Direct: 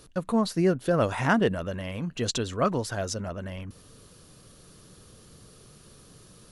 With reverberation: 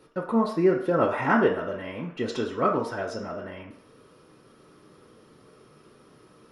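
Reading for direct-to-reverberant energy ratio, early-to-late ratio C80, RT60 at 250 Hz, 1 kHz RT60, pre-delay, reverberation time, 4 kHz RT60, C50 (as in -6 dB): -2.5 dB, 10.5 dB, 0.45 s, 0.60 s, 3 ms, 0.55 s, 0.60 s, 6.5 dB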